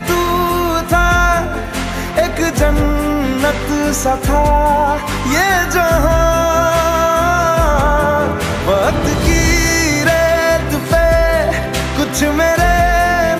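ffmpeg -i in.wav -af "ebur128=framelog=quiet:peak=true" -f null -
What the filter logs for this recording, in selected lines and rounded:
Integrated loudness:
  I:         -13.7 LUFS
  Threshold: -23.7 LUFS
Loudness range:
  LRA:         2.1 LU
  Threshold: -33.7 LUFS
  LRA low:   -15.1 LUFS
  LRA high:  -13.0 LUFS
True peak:
  Peak:       -2.9 dBFS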